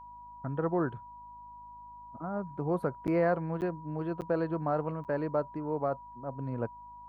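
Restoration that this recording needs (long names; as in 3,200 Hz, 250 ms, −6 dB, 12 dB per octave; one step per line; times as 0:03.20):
hum removal 52.6 Hz, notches 5
notch filter 970 Hz, Q 30
repair the gap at 0:03.07/0:03.61/0:04.21/0:05.04, 8.5 ms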